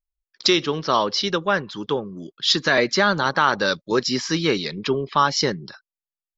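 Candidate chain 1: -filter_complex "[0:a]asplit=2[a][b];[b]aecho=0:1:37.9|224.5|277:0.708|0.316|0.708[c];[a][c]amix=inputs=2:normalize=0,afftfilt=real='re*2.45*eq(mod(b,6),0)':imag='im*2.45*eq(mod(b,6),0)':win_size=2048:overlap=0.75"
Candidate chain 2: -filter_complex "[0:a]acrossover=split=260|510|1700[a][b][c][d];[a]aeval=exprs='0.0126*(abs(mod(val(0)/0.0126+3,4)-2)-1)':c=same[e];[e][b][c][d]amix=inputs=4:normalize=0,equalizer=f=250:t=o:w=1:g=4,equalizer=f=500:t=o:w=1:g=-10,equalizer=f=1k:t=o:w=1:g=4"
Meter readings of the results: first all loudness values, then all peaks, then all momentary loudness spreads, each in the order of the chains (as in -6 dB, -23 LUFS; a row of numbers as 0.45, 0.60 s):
-20.0, -21.5 LUFS; -4.0, -3.5 dBFS; 8, 12 LU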